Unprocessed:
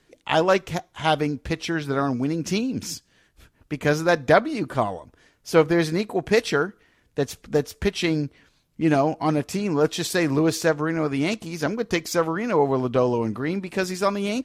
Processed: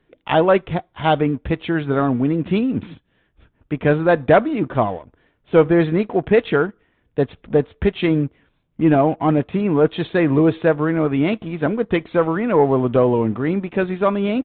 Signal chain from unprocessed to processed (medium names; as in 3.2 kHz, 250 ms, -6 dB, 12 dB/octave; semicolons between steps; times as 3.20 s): tilt shelf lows +3.5 dB, about 1.4 kHz; waveshaping leveller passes 1; resampled via 8 kHz; trim -1 dB